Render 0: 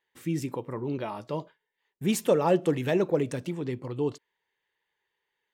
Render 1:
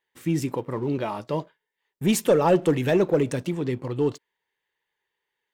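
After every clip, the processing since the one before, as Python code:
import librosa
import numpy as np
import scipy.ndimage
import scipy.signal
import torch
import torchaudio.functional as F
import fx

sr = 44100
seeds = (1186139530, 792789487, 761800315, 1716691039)

y = fx.leveller(x, sr, passes=1)
y = y * librosa.db_to_amplitude(1.5)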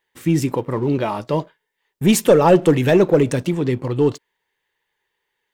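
y = fx.low_shelf(x, sr, hz=62.0, db=6.0)
y = y * librosa.db_to_amplitude(6.5)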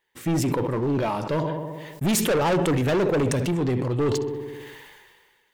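y = fx.echo_filtered(x, sr, ms=64, feedback_pct=57, hz=3300.0, wet_db=-18)
y = 10.0 ** (-18.0 / 20.0) * np.tanh(y / 10.0 ** (-18.0 / 20.0))
y = fx.sustainer(y, sr, db_per_s=33.0)
y = y * librosa.db_to_amplitude(-1.0)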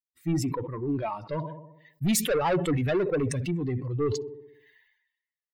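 y = fx.bin_expand(x, sr, power=2.0)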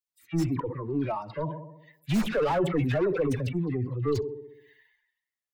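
y = fx.tracing_dist(x, sr, depth_ms=0.034)
y = fx.dispersion(y, sr, late='lows', ms=72.0, hz=1500.0)
y = fx.slew_limit(y, sr, full_power_hz=61.0)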